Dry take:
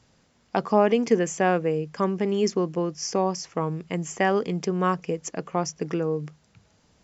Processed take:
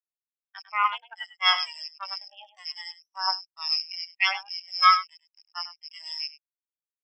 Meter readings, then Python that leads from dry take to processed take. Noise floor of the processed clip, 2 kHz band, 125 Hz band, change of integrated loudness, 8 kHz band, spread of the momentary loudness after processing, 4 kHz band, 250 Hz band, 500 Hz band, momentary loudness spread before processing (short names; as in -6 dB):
under -85 dBFS, +4.0 dB, under -40 dB, -0.5 dB, n/a, 19 LU, +12.5 dB, under -40 dB, -31.0 dB, 9 LU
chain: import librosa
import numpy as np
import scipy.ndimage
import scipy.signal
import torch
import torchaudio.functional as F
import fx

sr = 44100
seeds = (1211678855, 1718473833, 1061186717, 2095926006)

p1 = fx.rattle_buzz(x, sr, strikes_db=-38.0, level_db=-14.0)
p2 = fx.peak_eq(p1, sr, hz=2900.0, db=7.5, octaves=0.33)
p3 = fx.cheby_harmonics(p2, sr, harmonics=(3, 6), levels_db=(-13, -10), full_scale_db=-5.0)
p4 = scipy.signal.sosfilt(scipy.signal.butter(2, 1400.0, 'highpass', fs=sr, output='sos'), p3)
p5 = p4 + fx.echo_single(p4, sr, ms=101, db=-3.5, dry=0)
y = fx.spectral_expand(p5, sr, expansion=4.0)